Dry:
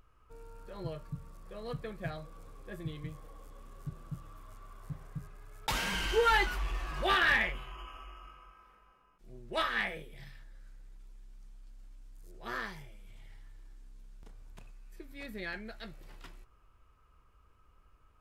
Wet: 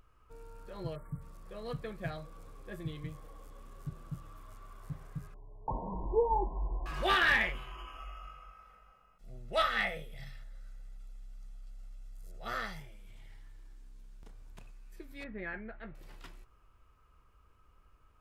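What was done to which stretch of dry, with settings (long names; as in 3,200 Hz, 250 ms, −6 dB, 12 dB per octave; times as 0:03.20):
0:00.96–0:01.21: time-frequency box erased 2,300–7,400 Hz
0:05.34–0:06.86: linear-phase brick-wall low-pass 1,100 Hz
0:07.98–0:12.80: comb filter 1.5 ms, depth 66%
0:15.24–0:15.95: low-pass filter 2,200 Hz 24 dB per octave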